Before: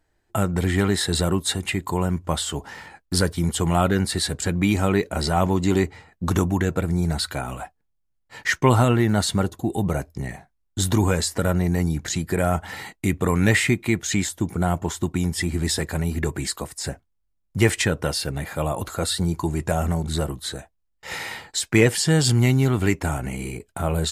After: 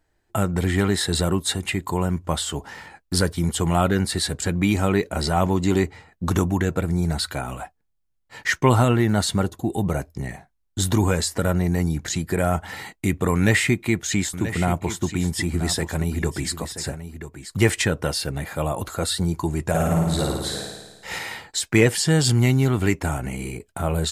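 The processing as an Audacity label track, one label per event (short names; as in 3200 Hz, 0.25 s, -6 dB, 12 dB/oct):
13.350000	17.570000	echo 0.981 s -11.5 dB
19.690000	21.190000	flutter echo walls apart 9.3 m, dies away in 1.2 s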